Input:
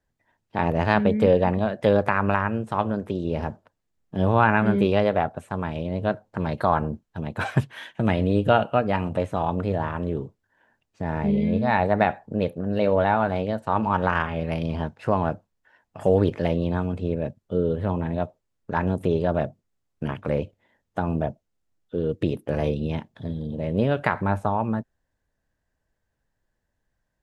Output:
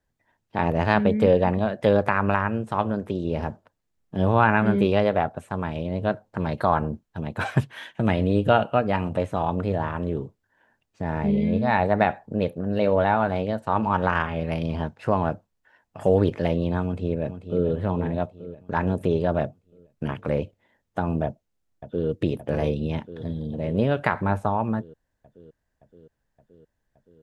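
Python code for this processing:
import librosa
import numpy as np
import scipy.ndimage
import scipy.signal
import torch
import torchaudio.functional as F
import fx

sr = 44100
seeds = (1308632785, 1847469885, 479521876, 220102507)

y = fx.echo_throw(x, sr, start_s=16.84, length_s=0.82, ms=440, feedback_pct=55, wet_db=-10.0)
y = fx.echo_throw(y, sr, start_s=21.25, length_s=0.83, ms=570, feedback_pct=75, wet_db=-10.5)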